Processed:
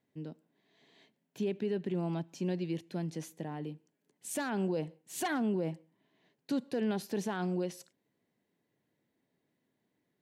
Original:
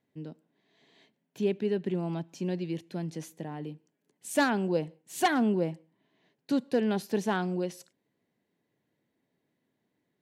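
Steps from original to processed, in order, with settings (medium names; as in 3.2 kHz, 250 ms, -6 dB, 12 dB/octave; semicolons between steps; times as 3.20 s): peak limiter -23.5 dBFS, peak gain reduction 11 dB; trim -1.5 dB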